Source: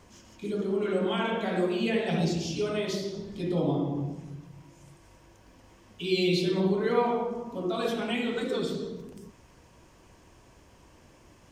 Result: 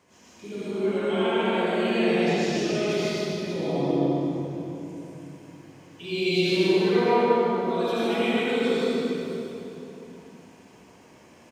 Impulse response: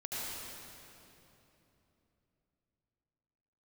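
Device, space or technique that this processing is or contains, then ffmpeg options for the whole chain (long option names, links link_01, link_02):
PA in a hall: -filter_complex "[0:a]highpass=160,equalizer=frequency=2300:width_type=o:width=0.53:gain=3,aecho=1:1:151:0.531[link_01];[1:a]atrim=start_sample=2205[link_02];[link_01][link_02]afir=irnorm=-1:irlink=0"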